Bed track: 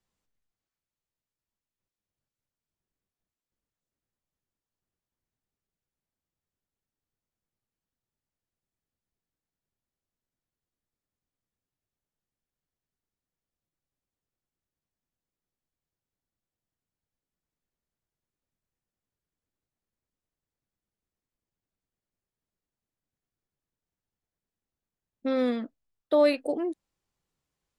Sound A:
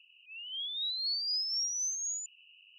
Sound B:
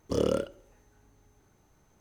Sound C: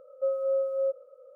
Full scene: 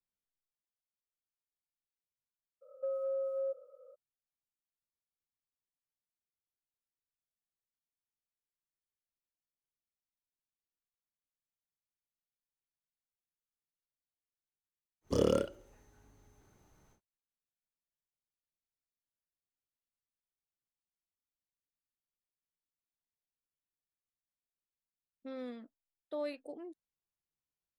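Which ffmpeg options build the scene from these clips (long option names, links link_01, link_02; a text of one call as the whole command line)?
ffmpeg -i bed.wav -i cue0.wav -i cue1.wav -i cue2.wav -filter_complex "[0:a]volume=-17dB[link_01];[3:a]acompressor=threshold=-27dB:ratio=6:attack=3.2:release=140:knee=1:detection=peak,atrim=end=1.35,asetpts=PTS-STARTPTS,volume=-5.5dB,afade=type=in:duration=0.02,afade=type=out:start_time=1.33:duration=0.02,adelay=2610[link_02];[2:a]atrim=end=2,asetpts=PTS-STARTPTS,volume=-2dB,afade=type=in:duration=0.1,afade=type=out:start_time=1.9:duration=0.1,adelay=15010[link_03];[link_01][link_02][link_03]amix=inputs=3:normalize=0" out.wav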